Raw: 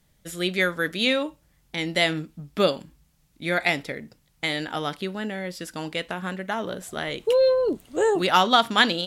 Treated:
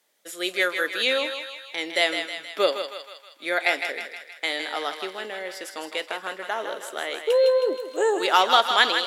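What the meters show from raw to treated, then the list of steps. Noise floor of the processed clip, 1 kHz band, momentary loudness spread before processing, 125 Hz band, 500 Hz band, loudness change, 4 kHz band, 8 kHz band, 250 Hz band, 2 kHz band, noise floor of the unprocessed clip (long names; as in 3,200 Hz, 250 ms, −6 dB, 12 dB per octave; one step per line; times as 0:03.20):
−50 dBFS, +1.0 dB, 14 LU, below −25 dB, 0.0 dB, 0.0 dB, +1.0 dB, +1.0 dB, −8.5 dB, +1.0 dB, −64 dBFS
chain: high-pass filter 370 Hz 24 dB per octave
feedback echo with a high-pass in the loop 158 ms, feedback 59%, high-pass 620 Hz, level −6.5 dB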